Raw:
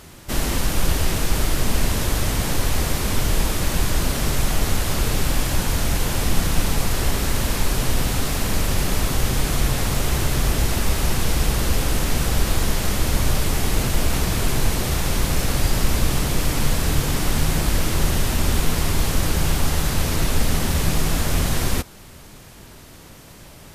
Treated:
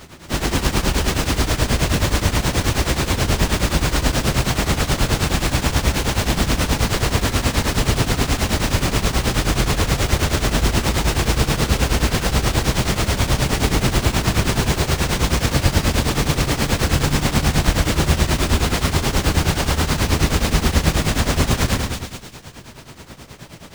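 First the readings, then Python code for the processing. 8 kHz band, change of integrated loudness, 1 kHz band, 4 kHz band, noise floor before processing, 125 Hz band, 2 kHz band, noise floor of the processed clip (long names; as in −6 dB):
+1.0 dB, +3.5 dB, +5.0 dB, +4.5 dB, −43 dBFS, +4.0 dB, +5.0 dB, −39 dBFS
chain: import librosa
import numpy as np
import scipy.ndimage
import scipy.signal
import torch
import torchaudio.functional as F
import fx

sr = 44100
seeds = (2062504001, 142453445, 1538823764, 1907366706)

y = scipy.signal.sosfilt(scipy.signal.butter(2, 48.0, 'highpass', fs=sr, output='sos'), x)
y = fx.echo_split(y, sr, split_hz=2600.0, low_ms=117, high_ms=181, feedback_pct=52, wet_db=-4)
y = fx.tremolo_shape(y, sr, shape='triangle', hz=9.4, depth_pct=85)
y = fx.running_max(y, sr, window=3)
y = y * librosa.db_to_amplitude(7.0)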